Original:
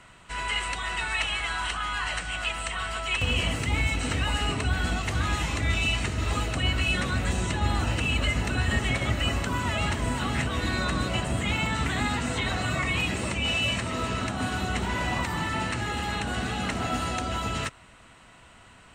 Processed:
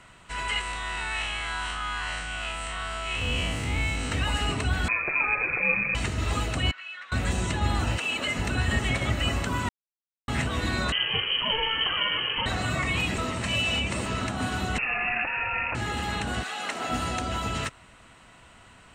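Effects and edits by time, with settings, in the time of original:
0:00.61–0:04.12: spectrum smeared in time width 103 ms
0:04.88–0:05.95: voice inversion scrambler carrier 2,500 Hz
0:06.71–0:07.12: four-pole ladder band-pass 1,900 Hz, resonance 30%
0:07.97–0:08.38: high-pass filter 600 Hz → 150 Hz
0:09.69–0:10.28: silence
0:10.92–0:12.46: voice inversion scrambler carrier 3,100 Hz
0:13.18–0:14.06: reverse
0:14.78–0:15.75: voice inversion scrambler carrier 2,700 Hz
0:16.42–0:16.88: high-pass filter 890 Hz → 300 Hz

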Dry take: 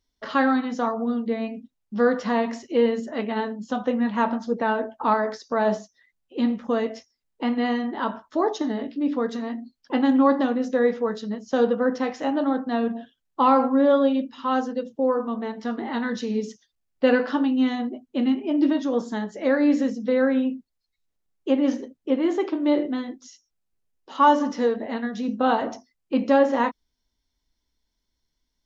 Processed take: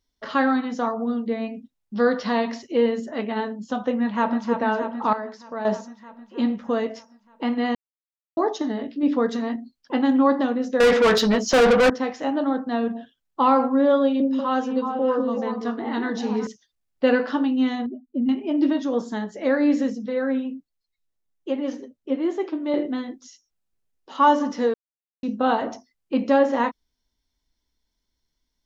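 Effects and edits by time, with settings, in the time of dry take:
0:01.95–0:02.62: low-pass with resonance 4,600 Hz, resonance Q 2.2
0:03.91–0:04.48: delay throw 310 ms, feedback 70%, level −7 dB
0:05.13–0:05.65: clip gain −8 dB
0:07.75–0:08.37: silence
0:09.03–0:09.56: clip gain +3.5 dB
0:10.80–0:11.90: mid-hump overdrive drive 30 dB, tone 5,800 Hz, clips at −9 dBFS
0:14.01–0:16.47: echo through a band-pass that steps 188 ms, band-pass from 320 Hz, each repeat 1.4 octaves, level 0 dB
0:17.86–0:18.29: expanding power law on the bin magnitudes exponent 1.9
0:20.06–0:22.74: flanger 1.3 Hz, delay 4.5 ms, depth 4.5 ms, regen +51%
0:24.74–0:25.23: silence

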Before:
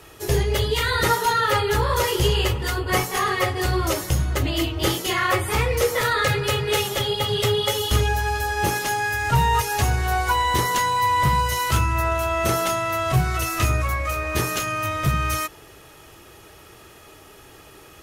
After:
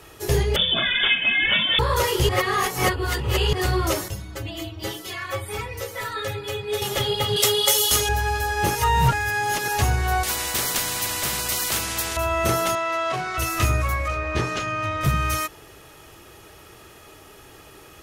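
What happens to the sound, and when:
0:00.56–0:01.79: voice inversion scrambler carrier 3,500 Hz
0:02.29–0:03.53: reverse
0:04.08–0:06.82: stiff-string resonator 99 Hz, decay 0.22 s, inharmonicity 0.008
0:07.36–0:08.09: bass and treble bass −12 dB, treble +12 dB
0:08.75–0:09.68: reverse
0:10.23–0:12.17: every bin compressed towards the loudest bin 4 to 1
0:12.75–0:13.38: band-pass filter 350–5,500 Hz
0:14.08–0:15.01: high-frequency loss of the air 110 metres

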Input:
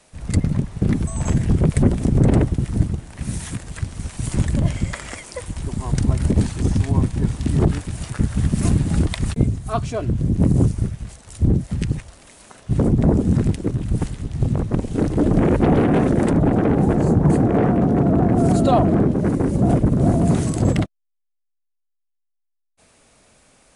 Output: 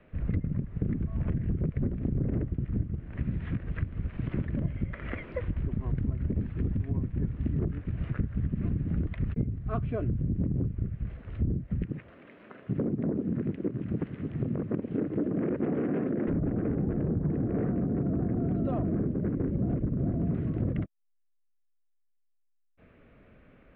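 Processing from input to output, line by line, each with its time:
0:04.17–0:04.65: low-shelf EQ 150 Hz −10 dB
0:11.84–0:16.28: high-pass filter 210 Hz
whole clip: Bessel low-pass filter 1,500 Hz, order 8; parametric band 850 Hz −13 dB 0.85 octaves; downward compressor 6 to 1, threshold −30 dBFS; level +3 dB

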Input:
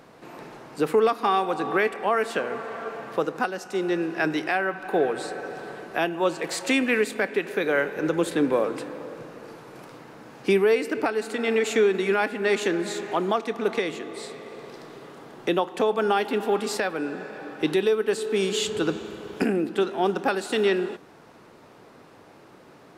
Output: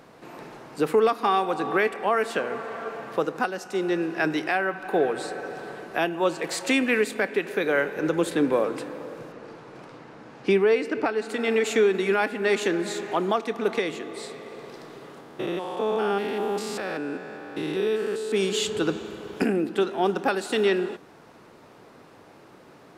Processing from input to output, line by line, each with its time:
0:09.32–0:11.29: high-frequency loss of the air 70 metres
0:15.20–0:18.32: spectrum averaged block by block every 200 ms

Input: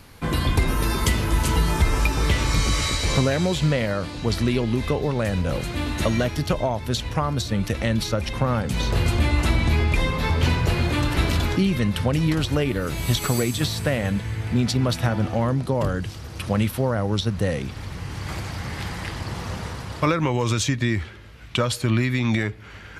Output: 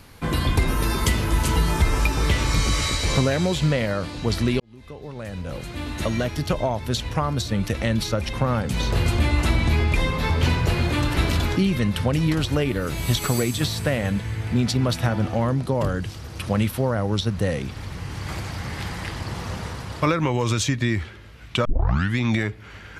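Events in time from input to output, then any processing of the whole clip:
0:04.60–0:06.65: fade in
0:21.65: tape start 0.53 s

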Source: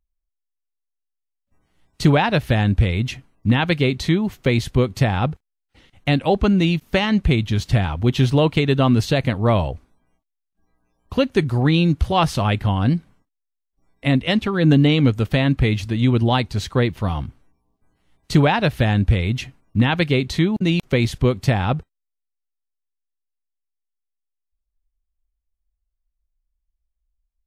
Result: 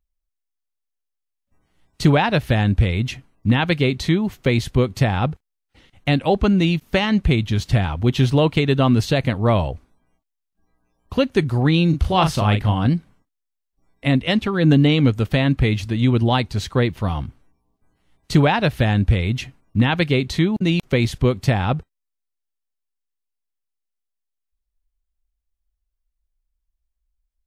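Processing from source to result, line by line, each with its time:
0:11.89–0:12.87: double-tracking delay 38 ms −7 dB

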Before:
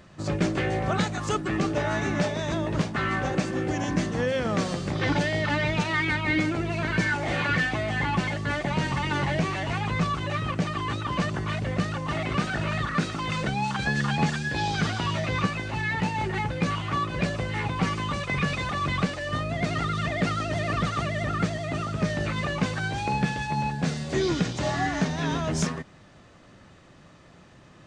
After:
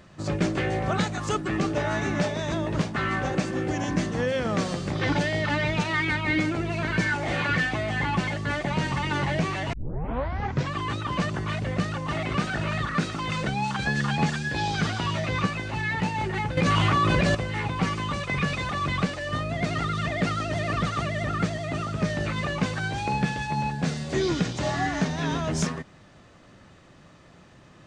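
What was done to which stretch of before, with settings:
0:09.73: tape start 1.04 s
0:16.57–0:17.35: envelope flattener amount 100%

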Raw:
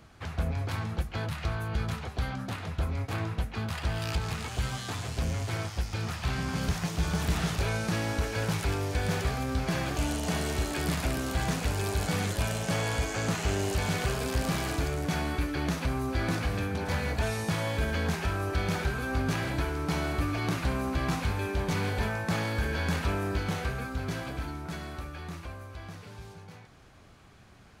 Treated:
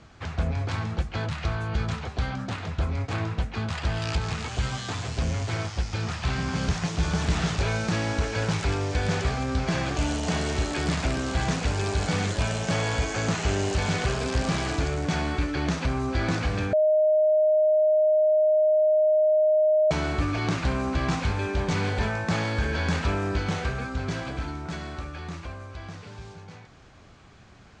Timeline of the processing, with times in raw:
0:16.73–0:19.91: beep over 618 Hz −20.5 dBFS
whole clip: Butterworth low-pass 7,900 Hz 36 dB per octave; level +3.5 dB

